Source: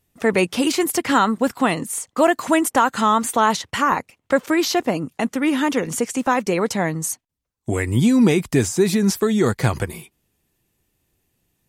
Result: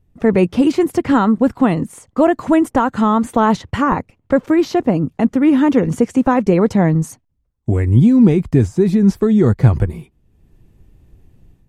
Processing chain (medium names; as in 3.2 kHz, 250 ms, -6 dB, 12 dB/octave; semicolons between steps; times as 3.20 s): tilt EQ -4 dB/octave; level rider gain up to 11 dB; trim -1 dB